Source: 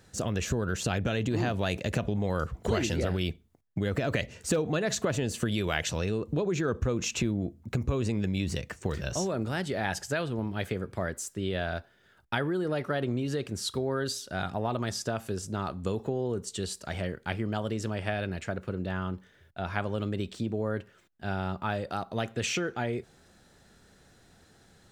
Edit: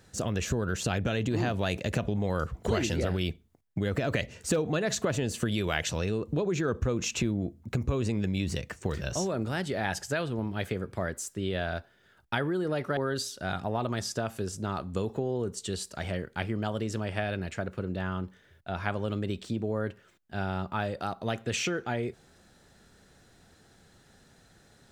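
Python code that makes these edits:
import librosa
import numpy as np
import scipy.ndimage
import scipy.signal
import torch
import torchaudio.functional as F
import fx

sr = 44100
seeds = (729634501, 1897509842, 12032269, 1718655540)

y = fx.edit(x, sr, fx.cut(start_s=12.97, length_s=0.9), tone=tone)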